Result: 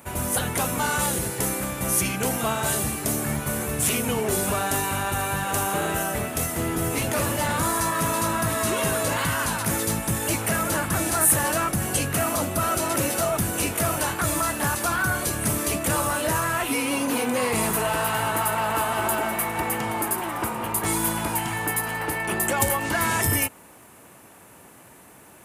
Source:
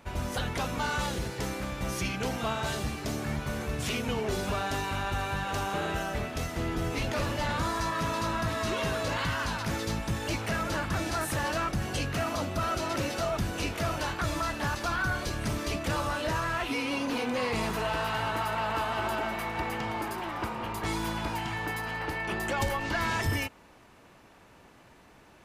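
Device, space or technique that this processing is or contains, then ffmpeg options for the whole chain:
budget condenser microphone: -af "highpass=87,highshelf=f=7k:t=q:w=1.5:g=13.5,volume=6dB"

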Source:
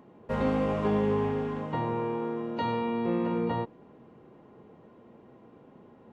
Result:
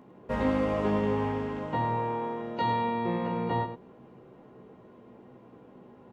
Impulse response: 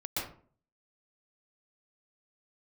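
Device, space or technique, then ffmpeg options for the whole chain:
slapback doubling: -filter_complex "[0:a]asplit=3[a][b][c];[b]adelay=16,volume=-5dB[d];[c]adelay=105,volume=-8.5dB[e];[a][d][e]amix=inputs=3:normalize=0"

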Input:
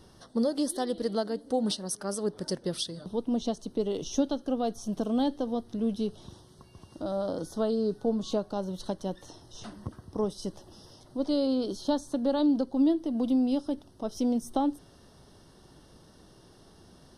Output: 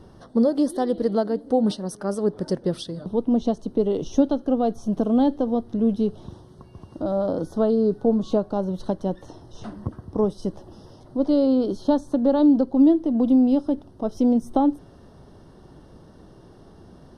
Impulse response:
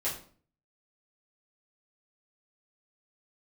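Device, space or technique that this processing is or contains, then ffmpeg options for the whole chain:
through cloth: -af "highshelf=f=2.1k:g=-15,volume=8.5dB"

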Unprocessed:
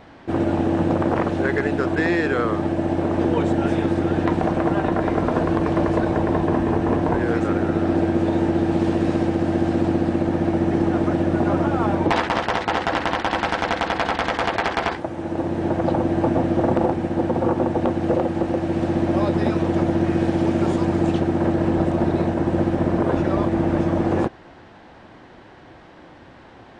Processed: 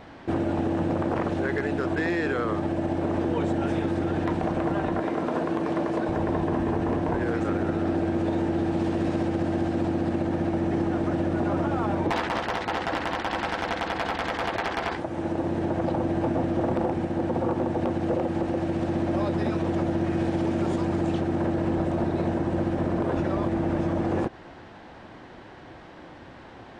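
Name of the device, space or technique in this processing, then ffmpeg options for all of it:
clipper into limiter: -filter_complex "[0:a]asoftclip=type=hard:threshold=-11dB,alimiter=limit=-17.5dB:level=0:latency=1:release=120,asettb=1/sr,asplit=3[a][b][c];[a]atrim=end=5.004[d];[b]atrim=start=5:end=6.09,asetpts=PTS-STARTPTS,afade=t=in:d=0.004:c=qsin,afade=t=out:st=1.086:d=0.004:c=qsin,highpass=180[e];[c]atrim=start=6.086[f];[d][e]acrossfade=d=0.004:c1=hsin:c2=qsin[g];[g][f]acrossfade=d=0.004:c1=qsin:c2=hsin"

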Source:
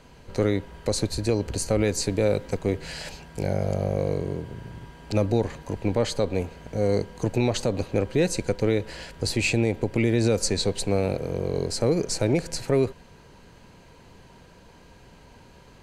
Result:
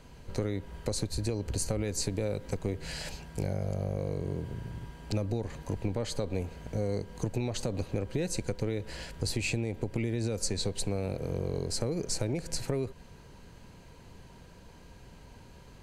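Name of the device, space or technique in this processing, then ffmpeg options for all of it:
ASMR close-microphone chain: -af "lowshelf=f=180:g=6.5,acompressor=threshold=-23dB:ratio=6,highshelf=f=6.6k:g=5.5,volume=-4.5dB"

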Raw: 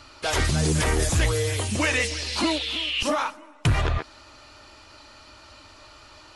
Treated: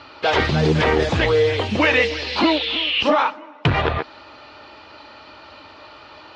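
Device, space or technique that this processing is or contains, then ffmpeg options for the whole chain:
guitar cabinet: -af "highpass=110,equalizer=f=110:t=q:w=4:g=-4,equalizer=f=470:t=q:w=4:g=5,equalizer=f=830:t=q:w=4:g=4,lowpass=f=4k:w=0.5412,lowpass=f=4k:w=1.3066,volume=6.5dB"

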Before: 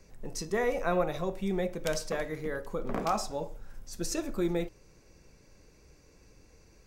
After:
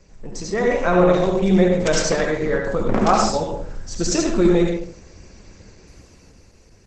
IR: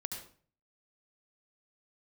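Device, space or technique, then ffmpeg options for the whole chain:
speakerphone in a meeting room: -filter_complex "[1:a]atrim=start_sample=2205[a];[0:a][a]afir=irnorm=-1:irlink=0,dynaudnorm=f=130:g=13:m=7dB,volume=8dB" -ar 48000 -c:a libopus -b:a 12k

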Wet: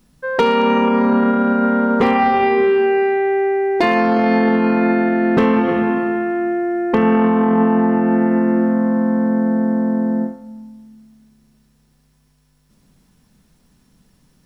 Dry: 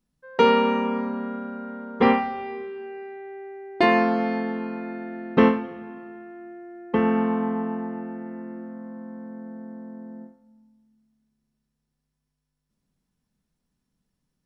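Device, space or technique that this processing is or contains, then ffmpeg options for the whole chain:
loud club master: -af "acompressor=threshold=-22dB:ratio=3,asoftclip=type=hard:threshold=-16.5dB,alimiter=level_in=28dB:limit=-1dB:release=50:level=0:latency=1,volume=-6.5dB"

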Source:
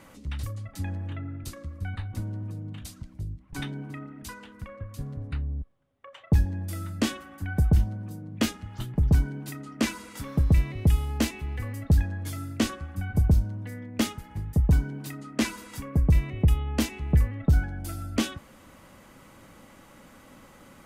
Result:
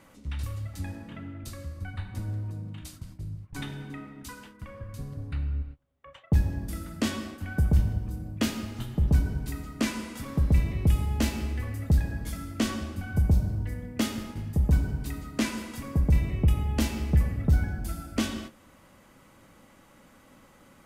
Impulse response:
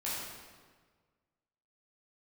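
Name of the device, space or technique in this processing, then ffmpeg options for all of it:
keyed gated reverb: -filter_complex "[0:a]asplit=3[a][b][c];[1:a]atrim=start_sample=2205[d];[b][d]afir=irnorm=-1:irlink=0[e];[c]apad=whole_len=919584[f];[e][f]sidechaingate=range=-33dB:threshold=-46dB:ratio=16:detection=peak,volume=-6dB[g];[a][g]amix=inputs=2:normalize=0,volume=-4.5dB"

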